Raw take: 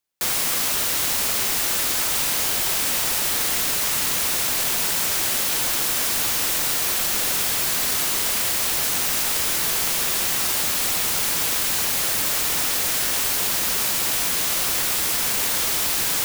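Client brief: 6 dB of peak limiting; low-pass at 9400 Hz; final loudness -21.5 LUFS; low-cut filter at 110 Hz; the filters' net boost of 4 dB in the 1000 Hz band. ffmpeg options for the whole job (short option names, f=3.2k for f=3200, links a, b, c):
-af "highpass=110,lowpass=9.4k,equalizer=f=1k:t=o:g=5,volume=3dB,alimiter=limit=-14dB:level=0:latency=1"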